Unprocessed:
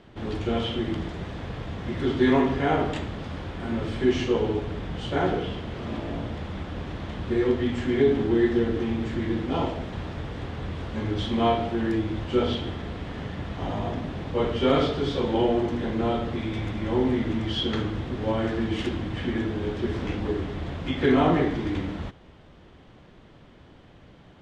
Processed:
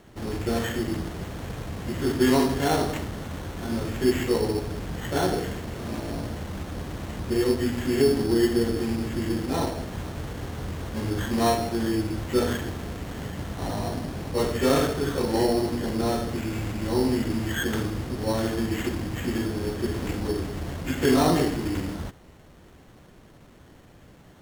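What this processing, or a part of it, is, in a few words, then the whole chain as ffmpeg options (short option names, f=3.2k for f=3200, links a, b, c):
crushed at another speed: -af "asetrate=22050,aresample=44100,acrusher=samples=18:mix=1:aa=0.000001,asetrate=88200,aresample=44100"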